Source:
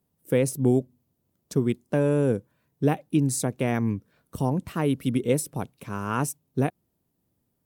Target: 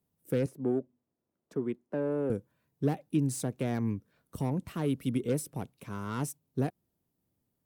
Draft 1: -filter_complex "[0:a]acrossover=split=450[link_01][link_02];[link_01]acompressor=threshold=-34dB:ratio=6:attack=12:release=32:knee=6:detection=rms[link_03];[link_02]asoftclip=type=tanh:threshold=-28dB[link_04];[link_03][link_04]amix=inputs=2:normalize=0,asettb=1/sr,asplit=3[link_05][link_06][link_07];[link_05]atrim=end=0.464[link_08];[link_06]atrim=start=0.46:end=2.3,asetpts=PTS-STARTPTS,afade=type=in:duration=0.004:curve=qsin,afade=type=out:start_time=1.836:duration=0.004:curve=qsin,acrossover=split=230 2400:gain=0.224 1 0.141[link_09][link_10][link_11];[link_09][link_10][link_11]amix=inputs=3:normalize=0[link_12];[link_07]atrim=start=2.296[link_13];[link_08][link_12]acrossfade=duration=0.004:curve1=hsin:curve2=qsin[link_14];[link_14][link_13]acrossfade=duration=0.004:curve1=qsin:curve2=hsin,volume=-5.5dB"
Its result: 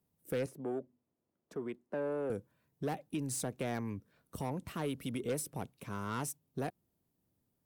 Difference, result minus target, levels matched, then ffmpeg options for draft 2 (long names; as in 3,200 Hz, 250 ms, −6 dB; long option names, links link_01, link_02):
downward compressor: peak gain reduction +14 dB
-filter_complex "[0:a]acrossover=split=450[link_01][link_02];[link_02]asoftclip=type=tanh:threshold=-28dB[link_03];[link_01][link_03]amix=inputs=2:normalize=0,asettb=1/sr,asplit=3[link_04][link_05][link_06];[link_04]atrim=end=0.464[link_07];[link_05]atrim=start=0.46:end=2.3,asetpts=PTS-STARTPTS,afade=type=in:duration=0.004:curve=qsin,afade=type=out:start_time=1.836:duration=0.004:curve=qsin,acrossover=split=230 2400:gain=0.224 1 0.141[link_08][link_09][link_10];[link_08][link_09][link_10]amix=inputs=3:normalize=0[link_11];[link_06]atrim=start=2.296[link_12];[link_07][link_11]acrossfade=duration=0.004:curve1=hsin:curve2=qsin[link_13];[link_13][link_12]acrossfade=duration=0.004:curve1=qsin:curve2=hsin,volume=-5.5dB"